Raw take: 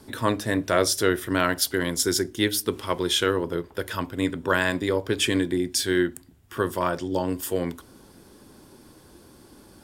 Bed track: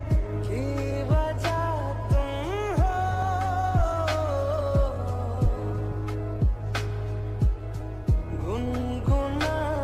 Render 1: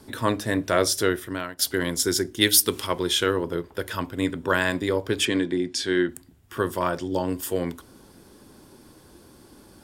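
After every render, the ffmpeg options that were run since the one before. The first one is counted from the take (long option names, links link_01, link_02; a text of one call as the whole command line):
ffmpeg -i in.wav -filter_complex "[0:a]asettb=1/sr,asplit=3[link_01][link_02][link_03];[link_01]atrim=end=2.414[link_04];[link_02]atrim=start=2.41:end=2.87,asetpts=PTS-STARTPTS,afade=type=in:duration=0.004:curve=qsin,afade=type=out:start_time=0.456:duration=0.004:curve=qsin,highshelf=frequency=2300:gain=10.5[link_05];[link_03]atrim=start=2.866[link_06];[link_04][link_05]acrossfade=duration=0.004:curve1=hsin:curve2=qsin[link_07];[link_07][link_06]acrossfade=duration=0.004:curve1=qsin:curve2=hsin,asettb=1/sr,asplit=3[link_08][link_09][link_10];[link_08]atrim=end=5.254[link_11];[link_09]atrim=start=5.25:end=6.09,asetpts=PTS-STARTPTS,afade=type=in:duration=0.004:curve=qsin,afade=type=out:start_time=0.836:duration=0.004:curve=qsin,highpass=130,lowpass=5900[link_12];[link_10]atrim=start=6.086[link_13];[link_11][link_12]acrossfade=duration=0.004:curve1=hsin:curve2=qsin[link_14];[link_14][link_13]acrossfade=duration=0.004:curve1=qsin:curve2=hsin,asplit=2[link_15][link_16];[link_15]atrim=end=1.59,asetpts=PTS-STARTPTS,afade=type=out:start_time=1.02:duration=0.57:silence=0.0794328[link_17];[link_16]atrim=start=1.59,asetpts=PTS-STARTPTS,afade=type=in:duration=0.004:curve=hsin:silence=0.0794328[link_18];[link_17][link_18]concat=n=2:v=0:a=1" out.wav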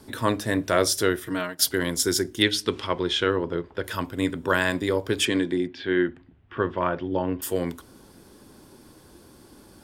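ffmpeg -i in.wav -filter_complex "[0:a]asettb=1/sr,asplit=3[link_01][link_02][link_03];[link_01]atrim=end=1.264[link_04];[link_02]atrim=start=1.26:end=1.69,asetpts=PTS-STARTPTS,afade=type=in:duration=0.004:curve=qsin,afade=type=out:start_time=0.426:duration=0.004:curve=qsin,aecho=1:1:6.4:0.83,atrim=end_sample=18963[link_05];[link_03]atrim=start=1.686[link_06];[link_04][link_05]acrossfade=duration=0.004:curve1=hsin:curve2=qsin[link_07];[link_07][link_06]acrossfade=duration=0.004:curve1=qsin:curve2=hsin,asettb=1/sr,asplit=3[link_08][link_09][link_10];[link_08]atrim=end=2.424[link_11];[link_09]atrim=start=2.42:end=3.84,asetpts=PTS-STARTPTS,afade=type=in:duration=0.004:curve=qsin,afade=type=out:start_time=1.416:duration=0.004:curve=qsin,lowpass=3900[link_12];[link_10]atrim=start=3.836[link_13];[link_11][link_12]acrossfade=duration=0.004:curve1=hsin:curve2=qsin[link_14];[link_14][link_13]acrossfade=duration=0.004:curve1=qsin:curve2=hsin,asettb=1/sr,asplit=3[link_15][link_16][link_17];[link_15]atrim=end=5.674[link_18];[link_16]atrim=start=5.67:end=7.42,asetpts=PTS-STARTPTS,afade=type=in:duration=0.004:curve=qsin,afade=type=out:start_time=1.746:duration=0.004:curve=qsin,lowpass=frequency=3000:width=0.5412,lowpass=frequency=3000:width=1.3066[link_19];[link_17]atrim=start=7.416[link_20];[link_18][link_19]acrossfade=duration=0.004:curve1=hsin:curve2=qsin[link_21];[link_21][link_20]acrossfade=duration=0.004:curve1=qsin:curve2=hsin" out.wav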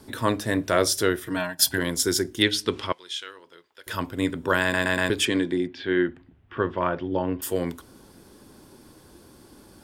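ffmpeg -i in.wav -filter_complex "[0:a]asettb=1/sr,asplit=3[link_01][link_02][link_03];[link_01]atrim=end=1.364[link_04];[link_02]atrim=start=1.36:end=1.78,asetpts=PTS-STARTPTS,afade=type=in:duration=0.004:curve=qsin,afade=type=out:start_time=0.416:duration=0.004:curve=qsin,aecho=1:1:1.2:0.72,atrim=end_sample=18522[link_05];[link_03]atrim=start=1.776[link_06];[link_04][link_05]acrossfade=duration=0.004:curve1=hsin:curve2=qsin[link_07];[link_07][link_06]acrossfade=duration=0.004:curve1=qsin:curve2=hsin,asettb=1/sr,asplit=3[link_08][link_09][link_10];[link_08]atrim=end=2.924[link_11];[link_09]atrim=start=2.92:end=3.87,asetpts=PTS-STARTPTS,afade=type=in:duration=0.004:curve=qsin,afade=type=out:start_time=0.946:duration=0.004:curve=qsin,aderivative[link_12];[link_10]atrim=start=3.866[link_13];[link_11][link_12]acrossfade=duration=0.004:curve1=hsin:curve2=qsin[link_14];[link_14][link_13]acrossfade=duration=0.004:curve1=qsin:curve2=hsin,asplit=5[link_15][link_16][link_17][link_18][link_19];[link_15]atrim=end=4.742[link_20];[link_16]atrim=start=4.618:end=4.742[link_21];[link_17]atrim=start=4.618:end=4.742[link_22];[link_18]atrim=start=4.618:end=4.742[link_23];[link_19]atrim=start=5.098[link_24];[link_20][link_21]acrossfade=duration=0.004:curve1=hsin:curve2=hsin[link_25];[link_25][link_22]acrossfade=duration=0.004:curve1=hsin:curve2=hsin[link_26];[link_26][link_23]acrossfade=duration=0.004:curve1=hsin:curve2=hsin[link_27];[link_27][link_24]acrossfade=duration=0.004:curve1=hsin:curve2=hsin" out.wav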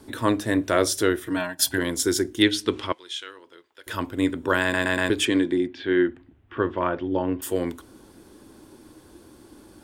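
ffmpeg -i in.wav -af "equalizer=frequency=160:width_type=o:width=0.33:gain=-6,equalizer=frequency=315:width_type=o:width=0.33:gain=6,equalizer=frequency=5000:width_type=o:width=0.33:gain=-4,equalizer=frequency=12500:width_type=o:width=0.33:gain=-4" out.wav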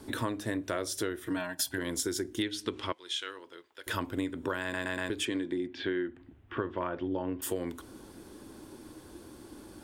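ffmpeg -i in.wav -af "acompressor=threshold=-29dB:ratio=12" out.wav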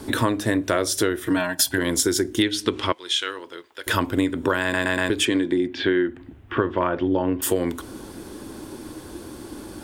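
ffmpeg -i in.wav -af "volume=11.5dB" out.wav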